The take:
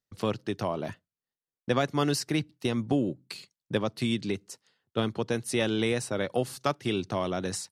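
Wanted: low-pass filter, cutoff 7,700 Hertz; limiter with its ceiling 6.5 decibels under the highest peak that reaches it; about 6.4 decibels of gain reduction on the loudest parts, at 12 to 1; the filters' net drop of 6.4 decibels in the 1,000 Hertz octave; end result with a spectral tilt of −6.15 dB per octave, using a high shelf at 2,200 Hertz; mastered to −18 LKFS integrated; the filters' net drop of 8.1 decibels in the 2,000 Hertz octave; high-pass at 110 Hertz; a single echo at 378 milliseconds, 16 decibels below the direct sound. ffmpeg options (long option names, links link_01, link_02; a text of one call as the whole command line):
ffmpeg -i in.wav -af "highpass=110,lowpass=7700,equalizer=frequency=1000:width_type=o:gain=-6.5,equalizer=frequency=2000:width_type=o:gain=-4.5,highshelf=frequency=2200:gain=-7,acompressor=threshold=-29dB:ratio=12,alimiter=level_in=1.5dB:limit=-24dB:level=0:latency=1,volume=-1.5dB,aecho=1:1:378:0.158,volume=19.5dB" out.wav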